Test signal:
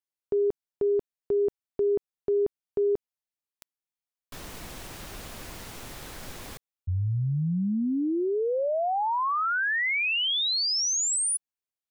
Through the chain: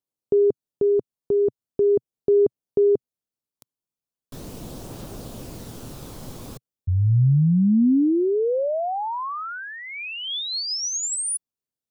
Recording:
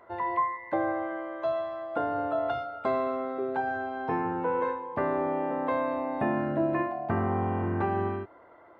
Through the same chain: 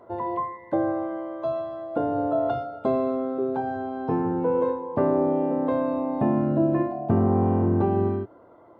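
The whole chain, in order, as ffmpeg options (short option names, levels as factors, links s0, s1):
-af "equalizer=f=125:t=o:w=1:g=7,equalizer=f=250:t=o:w=1:g=6,equalizer=f=500:t=o:w=1:g=5,equalizer=f=2000:t=o:w=1:g=-10,aphaser=in_gain=1:out_gain=1:delay=1:decay=0.2:speed=0.4:type=triangular"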